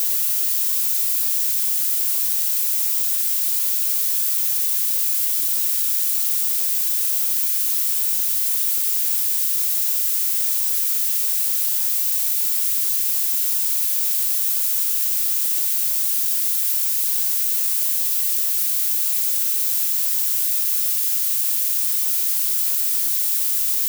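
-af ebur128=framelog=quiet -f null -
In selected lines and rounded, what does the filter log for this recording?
Integrated loudness:
  I:         -16.9 LUFS
  Threshold: -26.9 LUFS
Loudness range:
  LRA:         0.1 LU
  Threshold: -36.9 LUFS
  LRA low:   -17.0 LUFS
  LRA high:  -16.9 LUFS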